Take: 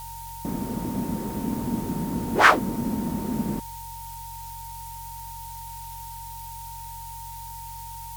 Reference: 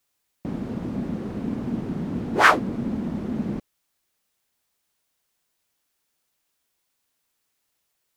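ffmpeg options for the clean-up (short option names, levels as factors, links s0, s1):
-af "adeclick=t=4,bandreject=f=45.1:t=h:w=4,bandreject=f=90.2:t=h:w=4,bandreject=f=135.3:t=h:w=4,bandreject=f=920:w=30,afftdn=nr=30:nf=-38"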